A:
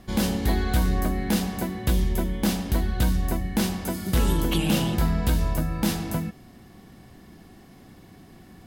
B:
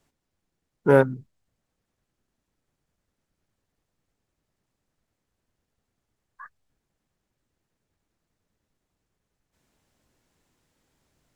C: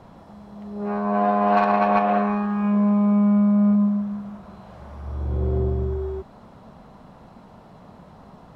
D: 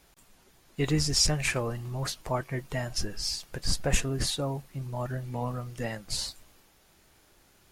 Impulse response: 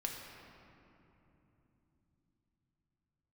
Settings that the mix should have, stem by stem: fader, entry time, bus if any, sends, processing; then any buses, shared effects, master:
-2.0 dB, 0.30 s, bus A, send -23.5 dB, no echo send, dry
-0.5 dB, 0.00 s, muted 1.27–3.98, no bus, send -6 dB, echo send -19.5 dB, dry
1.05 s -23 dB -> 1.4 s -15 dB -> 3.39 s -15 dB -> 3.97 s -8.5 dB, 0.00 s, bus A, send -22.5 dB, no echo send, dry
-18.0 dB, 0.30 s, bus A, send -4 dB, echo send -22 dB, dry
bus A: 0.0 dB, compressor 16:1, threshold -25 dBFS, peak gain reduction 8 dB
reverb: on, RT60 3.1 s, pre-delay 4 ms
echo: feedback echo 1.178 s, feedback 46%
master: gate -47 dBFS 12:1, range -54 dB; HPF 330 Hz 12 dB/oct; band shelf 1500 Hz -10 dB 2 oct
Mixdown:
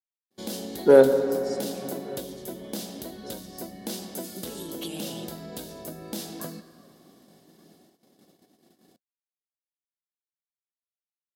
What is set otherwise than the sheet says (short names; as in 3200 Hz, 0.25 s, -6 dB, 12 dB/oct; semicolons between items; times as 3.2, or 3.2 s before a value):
stem C -23.0 dB -> -32.0 dB; stem D -18.0 dB -> -26.5 dB; reverb return +6.5 dB